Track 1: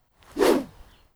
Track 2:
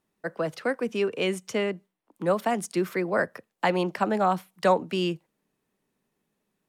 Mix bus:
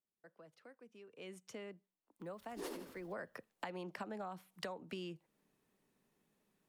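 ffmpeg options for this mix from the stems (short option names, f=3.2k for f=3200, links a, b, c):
-filter_complex "[0:a]highshelf=f=3.8k:g=8.5,tremolo=f=13:d=0.52,adelay=2200,volume=-15.5dB,asplit=2[a][b];[b]volume=-12dB[c];[1:a]acompressor=threshold=-38dB:ratio=2,volume=-1.5dB,afade=t=in:st=1.07:d=0.3:silence=0.298538,afade=t=in:st=3:d=0.35:silence=0.266073,asplit=2[d][e];[e]apad=whole_len=148071[f];[a][f]sidechaincompress=threshold=-44dB:ratio=8:attack=16:release=763[g];[c]aecho=0:1:81|162|243|324|405:1|0.36|0.13|0.0467|0.0168[h];[g][d][h]amix=inputs=3:normalize=0,acompressor=threshold=-41dB:ratio=10"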